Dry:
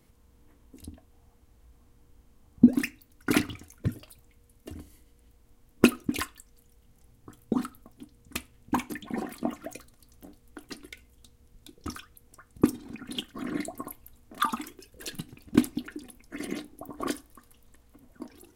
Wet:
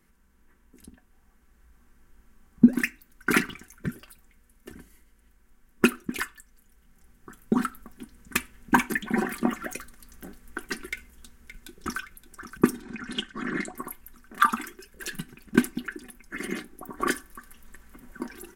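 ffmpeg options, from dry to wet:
-filter_complex "[0:a]asplit=2[s0][s1];[s1]afade=t=in:st=10.9:d=0.01,afade=t=out:st=11.99:d=0.01,aecho=0:1:570|1140|1710|2280|2850|3420|3990:0.281838|0.169103|0.101462|0.0608771|0.0365262|0.0219157|0.0131494[s2];[s0][s2]amix=inputs=2:normalize=0,asettb=1/sr,asplit=3[s3][s4][s5];[s3]atrim=end=12.824[s6];[s4]atrim=start=12.82:end=13.75,asetpts=PTS-STARTPTS,afade=t=in:d=0.004:c=qsin,afade=t=out:st=0.926:d=0.004:c=qsin,lowpass=f=8300:w=0.5412,lowpass=f=8300:w=1.3066[s7];[s5]atrim=start=13.746[s8];[s6][s7]acrossfade=d=0.004:c1=hsin:c2=qsin[s9];[s9][s8]acrossfade=d=0.004:c1=qsin:c2=hsin,equalizer=f=100:t=o:w=0.67:g=-10,equalizer=f=630:t=o:w=0.67:g=-8,equalizer=f=1600:t=o:w=0.67:g=10,equalizer=f=4000:t=o:w=0.67:g=-5,dynaudnorm=f=330:g=9:m=3.76,aecho=1:1:5.2:0.5,volume=0.708"

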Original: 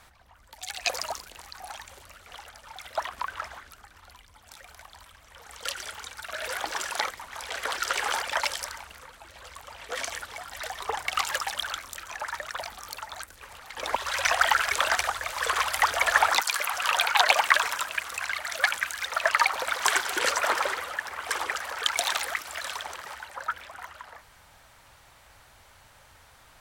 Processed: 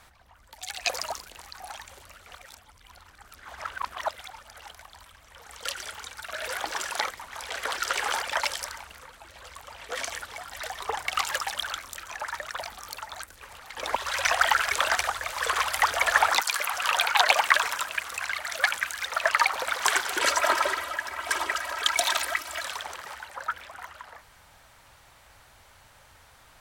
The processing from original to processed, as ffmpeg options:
-filter_complex "[0:a]asettb=1/sr,asplit=3[s0][s1][s2];[s0]atrim=end=20.214[s3];[s1]atrim=start=20.21:end=22.64,asetpts=PTS-STARTPTS,afade=t=in:d=0.004:c=qsin,afade=t=out:st=2.426:d=0.004:c=qsin,aecho=1:1:3.1:0.74,atrim=end_sample=107163[s4];[s2]atrim=start=22.636[s5];[s3][s4]acrossfade=d=0.004:c1=hsin:c2=qsin[s6];[s6][s5]acrossfade=d=0.004:c1=qsin:c2=hsin,asplit=3[s7][s8][s9];[s7]atrim=end=2.352[s10];[s8]atrim=start=2.348:end=4.712,asetpts=PTS-STARTPTS,areverse[s11];[s9]atrim=start=4.708[s12];[s10][s11]acrossfade=d=0.004:c1=hsin:c2=hsin[s13];[s13][s12]acrossfade=d=0.004:c1=hsin:c2=hsin"

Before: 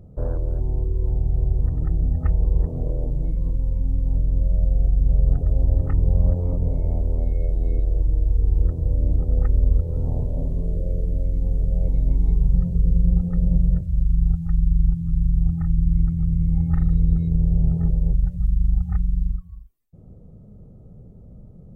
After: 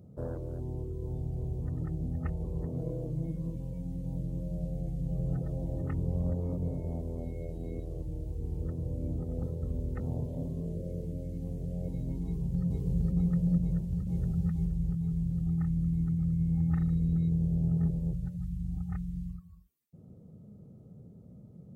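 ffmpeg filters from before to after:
-filter_complex "[0:a]asettb=1/sr,asplit=3[s0][s1][s2];[s0]atrim=end=2.784[s3];[s1]atrim=start=2.78:end=5.82,asetpts=PTS-STARTPTS,afade=t=in:d=0.004:c=qsin,afade=t=out:st=3.036:d=0.004:c=qsin,aecho=1:1:6.1:0.57,atrim=end_sample=134064[s4];[s2]atrim=start=5.816[s5];[s3][s4]acrossfade=d=0.004:c1=hsin:c2=qsin[s6];[s6][s5]acrossfade=d=0.004:c1=qsin:c2=hsin,asplit=2[s7][s8];[s8]afade=t=in:st=12.24:d=0.01,afade=t=out:st=12.65:d=0.01,aecho=0:1:460|920|1380|1840|2300|2760|3220|3680|4140|4600|5060|5520:1|0.8|0.64|0.512|0.4096|0.32768|0.262144|0.209715|0.167772|0.134218|0.107374|0.0858993[s9];[s7][s9]amix=inputs=2:normalize=0,asplit=2[s10][s11];[s11]afade=t=in:st=13.59:d=0.01,afade=t=out:st=14.18:d=0.01,aecho=0:1:470|940|1410|1880:0.841395|0.210349|0.0525872|0.0131468[s12];[s10][s12]amix=inputs=2:normalize=0,asplit=3[s13][s14][s15];[s13]atrim=end=9.432[s16];[s14]atrim=start=9.428:end=10.002,asetpts=PTS-STARTPTS,areverse[s17];[s15]atrim=start=9.998[s18];[s16][s17]acrossfade=d=0.004:c1=hsin:c2=hsin[s19];[s19][s18]acrossfade=d=0.004:c1=hsin:c2=hsin,highpass=150,equalizer=f=780:w=0.44:g=-7.5"

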